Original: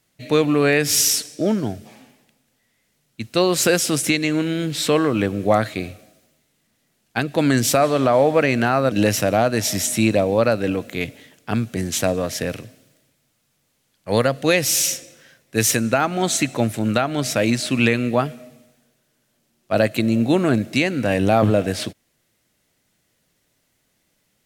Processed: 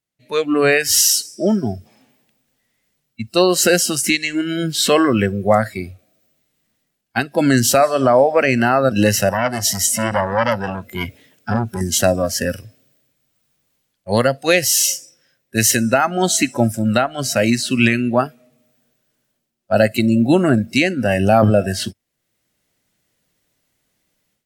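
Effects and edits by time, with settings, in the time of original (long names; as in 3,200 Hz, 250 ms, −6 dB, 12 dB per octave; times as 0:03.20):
0:09.29–0:11.81: saturating transformer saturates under 1,700 Hz
whole clip: noise reduction from a noise print of the clip's start 17 dB; automatic gain control gain up to 16 dB; level −1 dB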